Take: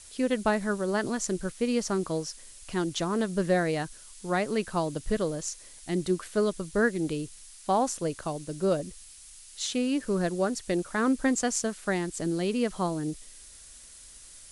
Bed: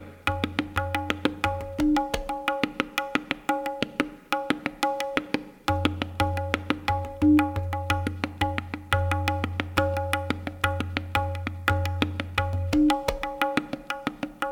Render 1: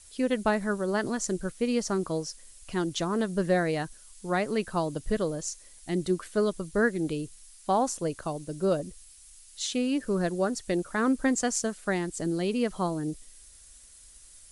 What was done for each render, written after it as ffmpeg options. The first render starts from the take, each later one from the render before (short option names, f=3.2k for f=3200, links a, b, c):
-af "afftdn=nr=6:nf=-50"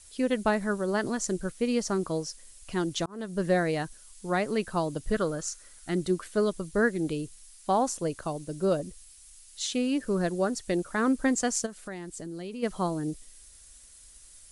-filter_complex "[0:a]asettb=1/sr,asplit=3[a][b][c];[a]atrim=end=5.144[d];[b]atrim=start=5.14:end=6,asetpts=PTS-STARTPTS,afade=t=in:d=0.004:c=qsin,afade=t=out:st=0.856:d=0.004:c=qsin,equalizer=f=1.4k:t=o:w=0.44:g=13[e];[c]atrim=start=5.996[f];[d][e]acrossfade=d=0.004:c1=hsin:c2=qsin[g];[g][f]acrossfade=d=0.004:c1=qsin:c2=hsin,asplit=3[h][i][j];[h]afade=t=out:st=11.65:d=0.02[k];[i]acompressor=threshold=-38dB:ratio=3:attack=3.2:release=140:knee=1:detection=peak,afade=t=in:st=11.65:d=0.02,afade=t=out:st=12.62:d=0.02[l];[j]afade=t=in:st=12.62:d=0.02[m];[k][l][m]amix=inputs=3:normalize=0,asplit=2[n][o];[n]atrim=end=3.06,asetpts=PTS-STARTPTS,afade=t=out:st=3.056:d=0.004:c=hsin[p];[o]atrim=start=3.06,asetpts=PTS-STARTPTS,afade=t=in:d=0.41[q];[p][q]concat=n=2:v=0:a=1"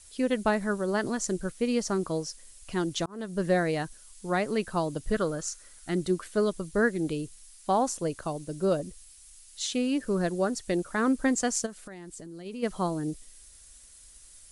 -filter_complex "[0:a]asplit=3[a][b][c];[a]afade=t=out:st=11.86:d=0.02[d];[b]acompressor=threshold=-39dB:ratio=6:attack=3.2:release=140:knee=1:detection=peak,afade=t=in:st=11.86:d=0.02,afade=t=out:st=12.45:d=0.02[e];[c]afade=t=in:st=12.45:d=0.02[f];[d][e][f]amix=inputs=3:normalize=0"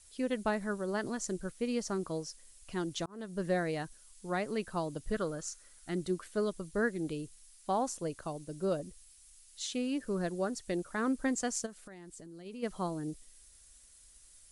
-af "volume=-6.5dB"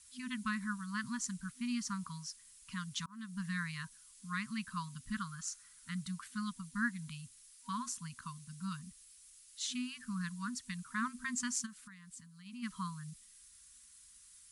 -af "highpass=f=140:p=1,afftfilt=real='re*(1-between(b*sr/4096,250,950))':imag='im*(1-between(b*sr/4096,250,950))':win_size=4096:overlap=0.75"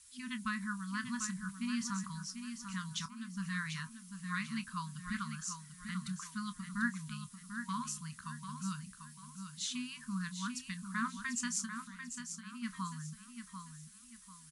-filter_complex "[0:a]asplit=2[a][b];[b]adelay=26,volume=-12dB[c];[a][c]amix=inputs=2:normalize=0,asplit=2[d][e];[e]aecho=0:1:743|1486|2229|2972:0.398|0.135|0.046|0.0156[f];[d][f]amix=inputs=2:normalize=0"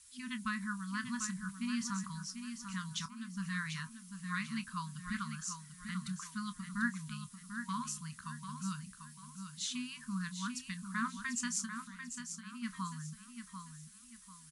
-af anull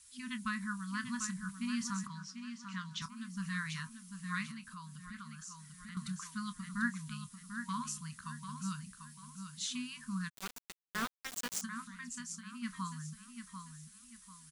-filter_complex "[0:a]asettb=1/sr,asplit=3[a][b][c];[a]atrim=end=2.074[d];[b]atrim=start=2.07:end=3.02,asetpts=PTS-STARTPTS,afade=t=in:d=0.004:c=qsin,afade=t=out:st=0.946:d=0.004:c=qsin,highpass=160,lowpass=4.8k[e];[c]atrim=start=3.016[f];[d][e]acrossfade=d=0.004:c1=hsin:c2=qsin[g];[g][f]acrossfade=d=0.004:c1=qsin:c2=hsin,asettb=1/sr,asplit=3[h][i][j];[h]atrim=end=4.514[k];[i]atrim=start=4.51:end=5.97,asetpts=PTS-STARTPTS,afade=t=in:d=0.004:c=qsin,afade=t=out:st=1.456:d=0.004:c=qsin,acompressor=threshold=-48dB:ratio=2.5:attack=3.2:release=140:knee=1:detection=peak[l];[j]atrim=start=5.966[m];[k][l]acrossfade=d=0.004:c1=hsin:c2=qsin[n];[n][m]acrossfade=d=0.004:c1=qsin:c2=hsin,asplit=3[o][p][q];[o]afade=t=out:st=10.28:d=0.02[r];[p]aeval=exprs='val(0)*gte(abs(val(0)),0.0224)':c=same,afade=t=in:st=10.28:d=0.02,afade=t=out:st=11.61:d=0.02[s];[q]afade=t=in:st=11.61:d=0.02[t];[r][s][t]amix=inputs=3:normalize=0"